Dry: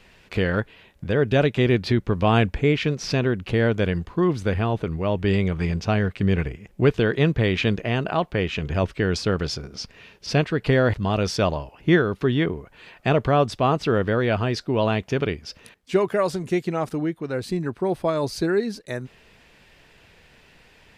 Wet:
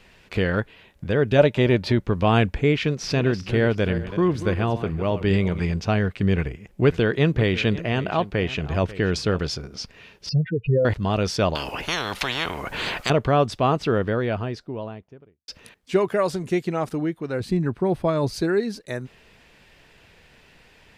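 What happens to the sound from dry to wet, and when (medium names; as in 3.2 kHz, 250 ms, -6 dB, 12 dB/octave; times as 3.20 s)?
1.38–2.02 s: small resonant body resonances 590/900 Hz, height 10 dB
2.85–5.60 s: backward echo that repeats 189 ms, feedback 40%, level -11.5 dB
6.35–9.39 s: delay 542 ms -16 dB
10.29–10.85 s: spectral contrast enhancement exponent 4
11.55–13.10 s: spectrum-flattening compressor 10:1
13.67–15.48 s: studio fade out
17.40–18.34 s: tone controls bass +6 dB, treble -4 dB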